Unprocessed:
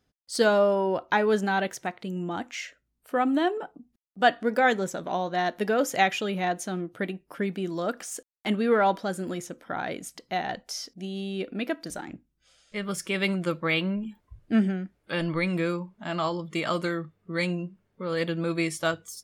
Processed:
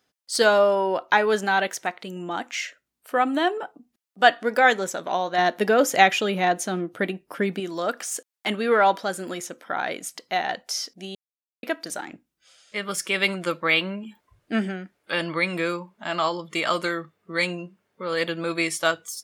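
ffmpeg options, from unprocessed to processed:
-filter_complex "[0:a]asettb=1/sr,asplit=3[a][b][c];[a]atrim=end=5.384[d];[b]atrim=start=5.38:end=7.6,asetpts=PTS-STARTPTS,afade=t=in:d=0.004:c=qsin,afade=t=out:st=2.216:d=0.004:c=qsin,lowshelf=f=430:g=8[e];[c]atrim=start=7.596[f];[d][e]acrossfade=d=0.004:c1=hsin:c2=qsin[g];[g][f]acrossfade=d=0.004:c1=qsin:c2=hsin,asplit=3[h][i][j];[h]atrim=end=11.15,asetpts=PTS-STARTPTS,afade=t=out:st=11.146:d=0.004:c=hsin[k];[i]atrim=start=11.15:end=11.63,asetpts=PTS-STARTPTS,volume=0[l];[j]atrim=start=11.63,asetpts=PTS-STARTPTS,afade=t=in:d=0.004:c=hsin[m];[k][l][m]concat=n=3:v=0:a=1,highpass=f=630:p=1,volume=6.5dB"

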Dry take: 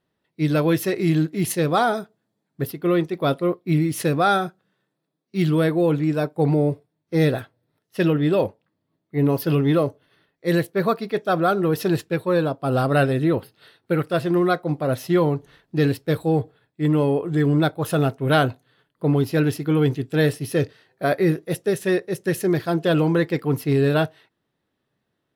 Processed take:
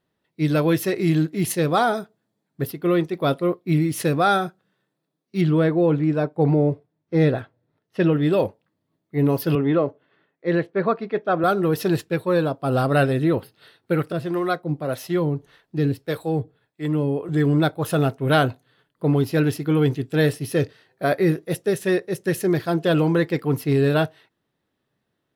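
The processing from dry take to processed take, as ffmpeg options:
-filter_complex "[0:a]asettb=1/sr,asplit=3[a][b][c];[a]atrim=end=5.414[d];[b]atrim=start=5.41:end=8.13,asetpts=PTS-STARTPTS,afade=t=in:d=0.004:c=qsin,afade=t=out:st=2.716:d=0.004:c=qsin,aemphasis=mode=reproduction:type=75fm[e];[c]atrim=start=8.126[f];[d][e]acrossfade=d=0.004:c1=hsin:c2=qsin[g];[g][f]acrossfade=d=0.004:c1=qsin:c2=hsin,asettb=1/sr,asplit=3[h][i][j];[h]atrim=end=9.554[k];[i]atrim=start=9.55:end=11.44,asetpts=PTS-STARTPTS,afade=t=in:d=0.004:c=qsin,afade=t=out:st=1.886:d=0.004:c=qsin,highpass=170,lowpass=2.4k[l];[j]atrim=start=11.436[m];[k][l]acrossfade=d=0.004:c1=hsin:c2=qsin[n];[n][m]acrossfade=d=0.004:c1=qsin:c2=hsin,asettb=1/sr,asplit=3[o][p][q];[o]atrim=end=14.124[r];[p]atrim=start=14.12:end=17.29,asetpts=PTS-STARTPTS,afade=t=in:d=0.004:c=qsin,afade=t=out:st=3.166:d=0.004:c=qsin,acrossover=split=400[s][t];[s]aeval=exprs='val(0)*(1-0.7/2+0.7/2*cos(2*PI*1.7*n/s))':c=same[u];[t]aeval=exprs='val(0)*(1-0.7/2-0.7/2*cos(2*PI*1.7*n/s))':c=same[v];[u][v]amix=inputs=2:normalize=0[w];[q]atrim=start=17.286[x];[r][w]acrossfade=d=0.004:c1=hsin:c2=qsin[y];[y][x]acrossfade=d=0.004:c1=qsin:c2=hsin"

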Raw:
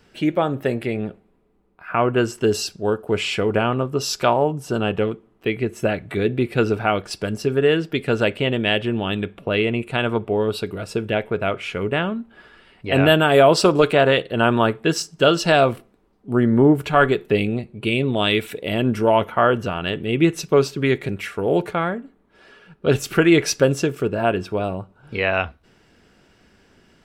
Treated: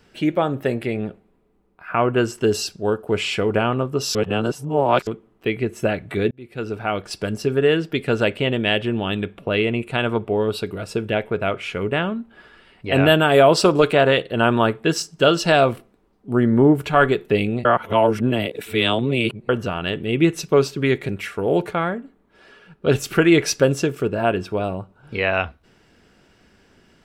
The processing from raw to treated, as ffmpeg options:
-filter_complex "[0:a]asplit=6[a][b][c][d][e][f];[a]atrim=end=4.152[g];[b]atrim=start=4.148:end=5.072,asetpts=PTS-STARTPTS,areverse[h];[c]atrim=start=5.068:end=6.31,asetpts=PTS-STARTPTS,afade=t=out:st=1.238:d=0.004:c=hsin[i];[d]atrim=start=6.31:end=17.652,asetpts=PTS-STARTPTS,afade=t=in:d=0.9[j];[e]atrim=start=17.648:end=19.492,asetpts=PTS-STARTPTS,areverse[k];[f]atrim=start=19.488[l];[g][h]acrossfade=d=0.004:c1=hsin:c2=hsin[m];[i][j]concat=n=2:v=0:a=1[n];[m][n]acrossfade=d=0.004:c1=hsin:c2=hsin[o];[o][k]acrossfade=d=0.004:c1=hsin:c2=hsin[p];[p][l]acrossfade=d=0.004:c1=hsin:c2=hsin"

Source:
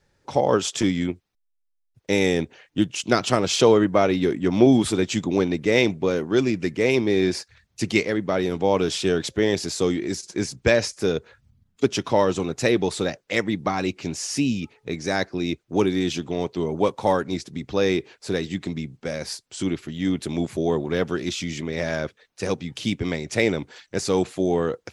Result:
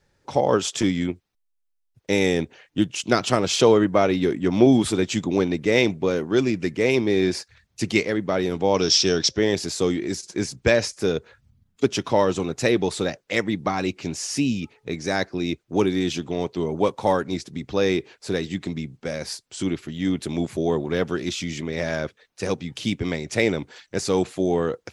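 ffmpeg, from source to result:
-filter_complex "[0:a]asettb=1/sr,asplit=3[a][b][c];[a]atrim=end=8.744[d];[b]atrim=start=8.74:end=9.39,asetpts=PTS-STARTPTS,afade=t=in:d=0.004:c=qsin,afade=t=out:st=0.646:d=0.004:c=qsin,lowpass=f=5.5k:t=q:w=7.8[e];[c]atrim=start=9.386[f];[d][e]acrossfade=d=0.004:c1=hsin:c2=qsin[g];[g][f]acrossfade=d=0.004:c1=qsin:c2=hsin"

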